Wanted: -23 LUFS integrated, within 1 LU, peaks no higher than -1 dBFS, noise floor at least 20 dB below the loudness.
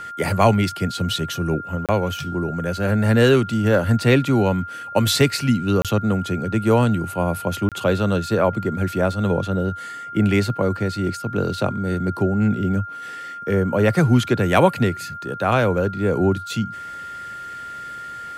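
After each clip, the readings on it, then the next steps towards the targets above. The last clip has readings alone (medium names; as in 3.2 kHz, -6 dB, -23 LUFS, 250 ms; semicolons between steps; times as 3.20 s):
dropouts 3; longest dropout 27 ms; steady tone 1.4 kHz; tone level -31 dBFS; loudness -20.5 LUFS; peak level -1.0 dBFS; loudness target -23.0 LUFS
-> interpolate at 1.86/5.82/7.69 s, 27 ms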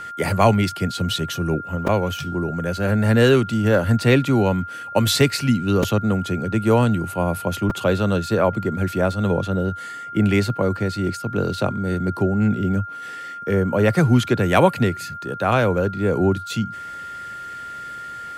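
dropouts 0; steady tone 1.4 kHz; tone level -31 dBFS
-> band-stop 1.4 kHz, Q 30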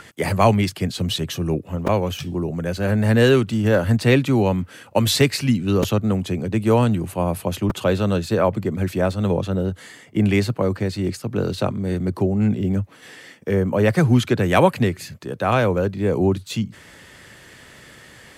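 steady tone not found; loudness -20.5 LUFS; peak level -1.0 dBFS; loudness target -23.0 LUFS
-> trim -2.5 dB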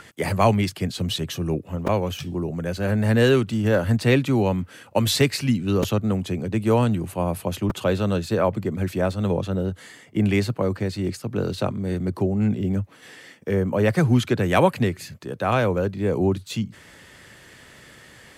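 loudness -23.0 LUFS; peak level -3.5 dBFS; noise floor -49 dBFS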